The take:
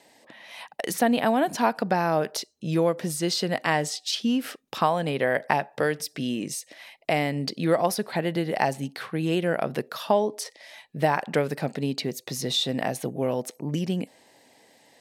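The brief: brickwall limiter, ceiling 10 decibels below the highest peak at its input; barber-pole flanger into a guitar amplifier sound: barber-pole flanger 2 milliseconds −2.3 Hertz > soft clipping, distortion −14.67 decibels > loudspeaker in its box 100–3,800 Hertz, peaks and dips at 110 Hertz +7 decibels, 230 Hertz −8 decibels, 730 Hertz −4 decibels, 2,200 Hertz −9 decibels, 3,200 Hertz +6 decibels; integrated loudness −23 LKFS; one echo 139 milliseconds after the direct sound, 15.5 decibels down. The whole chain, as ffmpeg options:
ffmpeg -i in.wav -filter_complex "[0:a]alimiter=limit=-15dB:level=0:latency=1,aecho=1:1:139:0.168,asplit=2[link_01][link_02];[link_02]adelay=2,afreqshift=-2.3[link_03];[link_01][link_03]amix=inputs=2:normalize=1,asoftclip=threshold=-24dB,highpass=100,equalizer=frequency=110:width_type=q:width=4:gain=7,equalizer=frequency=230:width_type=q:width=4:gain=-8,equalizer=frequency=730:width_type=q:width=4:gain=-4,equalizer=frequency=2200:width_type=q:width=4:gain=-9,equalizer=frequency=3200:width_type=q:width=4:gain=6,lowpass=frequency=3800:width=0.5412,lowpass=frequency=3800:width=1.3066,volume=12dB" out.wav

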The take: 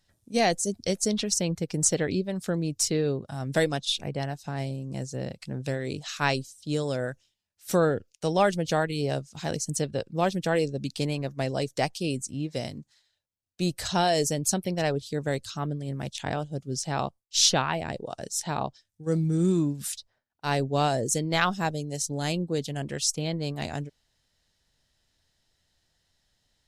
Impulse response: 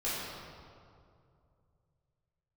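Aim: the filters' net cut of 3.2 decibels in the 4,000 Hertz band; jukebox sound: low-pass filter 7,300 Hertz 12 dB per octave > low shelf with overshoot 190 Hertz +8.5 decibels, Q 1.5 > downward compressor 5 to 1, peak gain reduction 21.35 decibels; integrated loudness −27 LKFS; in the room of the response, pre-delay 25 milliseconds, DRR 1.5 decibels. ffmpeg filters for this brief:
-filter_complex "[0:a]equalizer=frequency=4000:width_type=o:gain=-3.5,asplit=2[link_01][link_02];[1:a]atrim=start_sample=2205,adelay=25[link_03];[link_02][link_03]afir=irnorm=-1:irlink=0,volume=-8.5dB[link_04];[link_01][link_04]amix=inputs=2:normalize=0,lowpass=7300,lowshelf=frequency=190:width_type=q:width=1.5:gain=8.5,acompressor=threshold=-35dB:ratio=5,volume=10dB"

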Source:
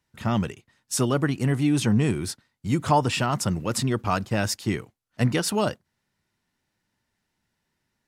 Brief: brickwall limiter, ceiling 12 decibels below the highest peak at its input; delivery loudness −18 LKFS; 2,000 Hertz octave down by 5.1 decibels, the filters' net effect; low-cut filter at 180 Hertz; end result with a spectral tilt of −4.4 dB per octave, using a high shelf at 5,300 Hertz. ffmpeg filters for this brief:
ffmpeg -i in.wav -af "highpass=180,equalizer=frequency=2000:width_type=o:gain=-8.5,highshelf=frequency=5300:gain=7,volume=12.5dB,alimiter=limit=-7.5dB:level=0:latency=1" out.wav

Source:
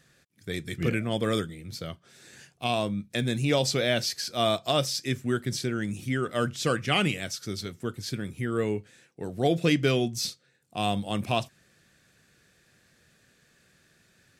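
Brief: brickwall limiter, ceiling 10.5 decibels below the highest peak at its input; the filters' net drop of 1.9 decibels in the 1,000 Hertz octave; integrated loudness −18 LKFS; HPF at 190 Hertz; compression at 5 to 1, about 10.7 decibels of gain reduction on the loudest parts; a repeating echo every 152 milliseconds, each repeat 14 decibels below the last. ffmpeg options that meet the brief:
ffmpeg -i in.wav -af "highpass=190,equalizer=frequency=1000:width_type=o:gain=-3,acompressor=threshold=-32dB:ratio=5,alimiter=level_in=4dB:limit=-24dB:level=0:latency=1,volume=-4dB,aecho=1:1:152|304:0.2|0.0399,volume=21dB" out.wav

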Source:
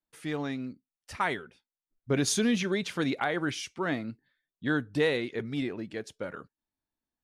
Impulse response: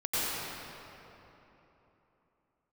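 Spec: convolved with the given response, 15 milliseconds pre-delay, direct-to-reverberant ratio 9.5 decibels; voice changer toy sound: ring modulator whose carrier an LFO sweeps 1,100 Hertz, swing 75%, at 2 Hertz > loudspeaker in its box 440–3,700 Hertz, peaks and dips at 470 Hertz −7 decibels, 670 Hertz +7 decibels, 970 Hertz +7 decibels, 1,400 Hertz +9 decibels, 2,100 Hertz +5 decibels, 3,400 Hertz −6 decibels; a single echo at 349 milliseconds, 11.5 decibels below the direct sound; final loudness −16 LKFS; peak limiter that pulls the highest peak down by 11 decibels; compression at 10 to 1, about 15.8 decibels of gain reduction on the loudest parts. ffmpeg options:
-filter_complex "[0:a]acompressor=threshold=-38dB:ratio=10,alimiter=level_in=12dB:limit=-24dB:level=0:latency=1,volume=-12dB,aecho=1:1:349:0.266,asplit=2[link_01][link_02];[1:a]atrim=start_sample=2205,adelay=15[link_03];[link_02][link_03]afir=irnorm=-1:irlink=0,volume=-20dB[link_04];[link_01][link_04]amix=inputs=2:normalize=0,aeval=exprs='val(0)*sin(2*PI*1100*n/s+1100*0.75/2*sin(2*PI*2*n/s))':channel_layout=same,highpass=440,equalizer=frequency=470:width_type=q:width=4:gain=-7,equalizer=frequency=670:width_type=q:width=4:gain=7,equalizer=frequency=970:width_type=q:width=4:gain=7,equalizer=frequency=1400:width_type=q:width=4:gain=9,equalizer=frequency=2100:width_type=q:width=4:gain=5,equalizer=frequency=3400:width_type=q:width=4:gain=-6,lowpass=frequency=3700:width=0.5412,lowpass=frequency=3700:width=1.3066,volume=26.5dB"

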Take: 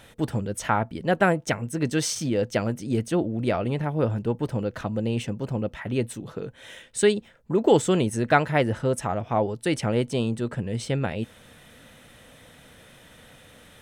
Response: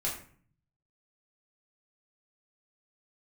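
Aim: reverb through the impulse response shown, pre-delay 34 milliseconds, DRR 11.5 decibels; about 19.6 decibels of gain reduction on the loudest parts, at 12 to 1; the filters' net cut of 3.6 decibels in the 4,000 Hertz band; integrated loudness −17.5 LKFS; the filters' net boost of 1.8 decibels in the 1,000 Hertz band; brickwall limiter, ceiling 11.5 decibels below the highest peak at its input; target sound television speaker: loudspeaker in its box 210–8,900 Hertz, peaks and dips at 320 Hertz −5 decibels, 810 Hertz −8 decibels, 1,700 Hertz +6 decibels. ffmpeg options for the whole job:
-filter_complex "[0:a]equalizer=frequency=1000:width_type=o:gain=7.5,equalizer=frequency=4000:width_type=o:gain=-6,acompressor=threshold=-31dB:ratio=12,alimiter=level_in=3dB:limit=-24dB:level=0:latency=1,volume=-3dB,asplit=2[link_01][link_02];[1:a]atrim=start_sample=2205,adelay=34[link_03];[link_02][link_03]afir=irnorm=-1:irlink=0,volume=-16.5dB[link_04];[link_01][link_04]amix=inputs=2:normalize=0,highpass=frequency=210:width=0.5412,highpass=frequency=210:width=1.3066,equalizer=frequency=320:width_type=q:width=4:gain=-5,equalizer=frequency=810:width_type=q:width=4:gain=-8,equalizer=frequency=1700:width_type=q:width=4:gain=6,lowpass=frequency=8900:width=0.5412,lowpass=frequency=8900:width=1.3066,volume=23.5dB"

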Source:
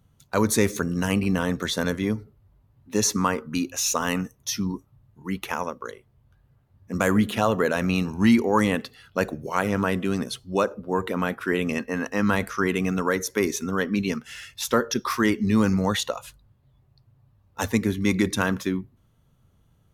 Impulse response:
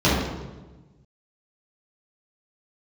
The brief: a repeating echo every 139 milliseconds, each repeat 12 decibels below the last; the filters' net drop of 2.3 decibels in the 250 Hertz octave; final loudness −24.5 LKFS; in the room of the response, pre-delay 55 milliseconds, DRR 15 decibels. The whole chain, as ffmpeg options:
-filter_complex "[0:a]equalizer=frequency=250:width_type=o:gain=-3,aecho=1:1:139|278|417:0.251|0.0628|0.0157,asplit=2[link_01][link_02];[1:a]atrim=start_sample=2205,adelay=55[link_03];[link_02][link_03]afir=irnorm=-1:irlink=0,volume=-36dB[link_04];[link_01][link_04]amix=inputs=2:normalize=0,volume=0.5dB"

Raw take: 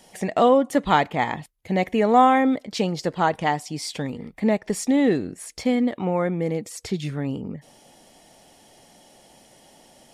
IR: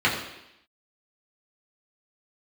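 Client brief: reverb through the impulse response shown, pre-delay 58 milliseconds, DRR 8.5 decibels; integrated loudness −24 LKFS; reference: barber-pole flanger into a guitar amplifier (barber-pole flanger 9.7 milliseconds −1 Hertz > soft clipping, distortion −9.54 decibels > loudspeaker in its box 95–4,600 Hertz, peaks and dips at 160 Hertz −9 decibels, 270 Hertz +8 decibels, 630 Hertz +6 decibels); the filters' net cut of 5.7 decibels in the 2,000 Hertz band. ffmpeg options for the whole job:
-filter_complex "[0:a]equalizer=frequency=2000:width_type=o:gain=-7,asplit=2[link_01][link_02];[1:a]atrim=start_sample=2205,adelay=58[link_03];[link_02][link_03]afir=irnorm=-1:irlink=0,volume=-26dB[link_04];[link_01][link_04]amix=inputs=2:normalize=0,asplit=2[link_05][link_06];[link_06]adelay=9.7,afreqshift=-1[link_07];[link_05][link_07]amix=inputs=2:normalize=1,asoftclip=threshold=-21.5dB,highpass=95,equalizer=frequency=160:width_type=q:width=4:gain=-9,equalizer=frequency=270:width_type=q:width=4:gain=8,equalizer=frequency=630:width_type=q:width=4:gain=6,lowpass=frequency=4600:width=0.5412,lowpass=frequency=4600:width=1.3066,volume=2.5dB"

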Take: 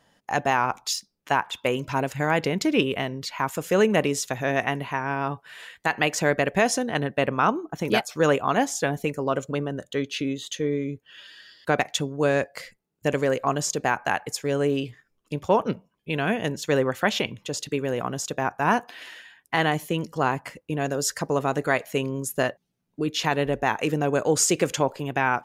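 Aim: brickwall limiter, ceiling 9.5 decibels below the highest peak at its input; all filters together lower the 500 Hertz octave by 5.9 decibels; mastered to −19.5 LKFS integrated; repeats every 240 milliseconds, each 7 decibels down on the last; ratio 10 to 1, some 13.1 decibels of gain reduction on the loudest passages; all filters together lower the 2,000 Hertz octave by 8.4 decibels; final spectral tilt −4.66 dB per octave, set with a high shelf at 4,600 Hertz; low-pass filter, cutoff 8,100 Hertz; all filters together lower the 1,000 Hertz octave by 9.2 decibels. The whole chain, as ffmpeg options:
ffmpeg -i in.wav -af "lowpass=8100,equalizer=frequency=500:width_type=o:gain=-4.5,equalizer=frequency=1000:width_type=o:gain=-9,equalizer=frequency=2000:width_type=o:gain=-7,highshelf=frequency=4600:gain=-3,acompressor=threshold=-34dB:ratio=10,alimiter=level_in=6dB:limit=-24dB:level=0:latency=1,volume=-6dB,aecho=1:1:240|480|720|960|1200:0.447|0.201|0.0905|0.0407|0.0183,volume=21dB" out.wav

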